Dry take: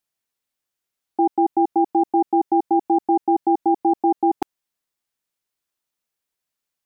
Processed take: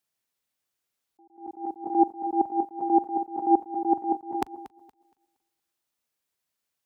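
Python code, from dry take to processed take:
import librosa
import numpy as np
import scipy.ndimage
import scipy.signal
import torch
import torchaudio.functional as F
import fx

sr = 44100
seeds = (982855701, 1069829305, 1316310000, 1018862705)

y = fx.reverse_delay_fb(x, sr, ms=117, feedback_pct=49, wet_db=-13.0)
y = scipy.signal.sosfilt(scipy.signal.butter(4, 41.0, 'highpass', fs=sr, output='sos'), y)
y = fx.attack_slew(y, sr, db_per_s=160.0)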